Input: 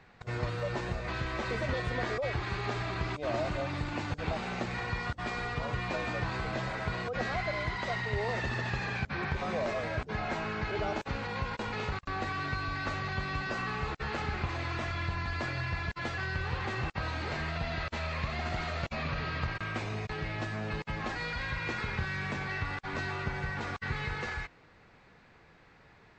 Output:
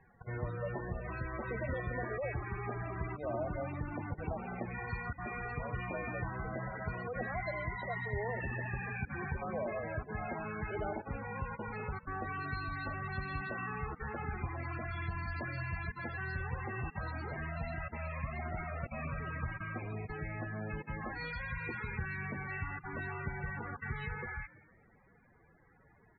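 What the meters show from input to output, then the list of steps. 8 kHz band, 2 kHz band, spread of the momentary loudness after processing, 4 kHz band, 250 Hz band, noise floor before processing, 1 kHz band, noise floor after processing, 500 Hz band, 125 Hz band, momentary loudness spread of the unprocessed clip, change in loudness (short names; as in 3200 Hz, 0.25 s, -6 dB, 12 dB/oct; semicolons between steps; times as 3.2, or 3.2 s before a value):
under -25 dB, -5.5 dB, 3 LU, -18.0 dB, -4.5 dB, -59 dBFS, -5.5 dB, -64 dBFS, -4.5 dB, -4.0 dB, 3 LU, -5.0 dB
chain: frequency-shifting echo 0.166 s, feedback 46%, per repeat +55 Hz, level -19.5 dB; loudest bins only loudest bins 32; gain -4 dB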